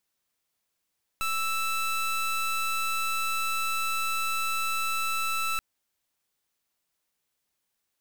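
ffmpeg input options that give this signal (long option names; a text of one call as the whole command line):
ffmpeg -f lavfi -i "aevalsrc='0.0398*(2*lt(mod(1320*t,1),0.23)-1)':duration=4.38:sample_rate=44100" out.wav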